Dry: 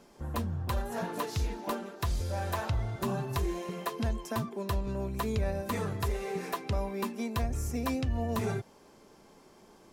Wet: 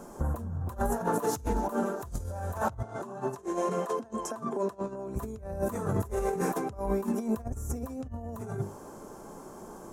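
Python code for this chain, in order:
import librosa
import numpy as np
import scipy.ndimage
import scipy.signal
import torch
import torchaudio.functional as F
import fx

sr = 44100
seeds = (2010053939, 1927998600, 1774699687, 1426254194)

y = fx.band_shelf(x, sr, hz=3100.0, db=-14.5, octaves=1.7)
y = fx.hum_notches(y, sr, base_hz=50, count=9)
y = fx.over_compress(y, sr, threshold_db=-38.0, ratio=-0.5)
y = fx.bandpass_edges(y, sr, low_hz=260.0, high_hz=7900.0, at=(2.83, 5.16))
y = F.gain(torch.from_numpy(y), 7.5).numpy()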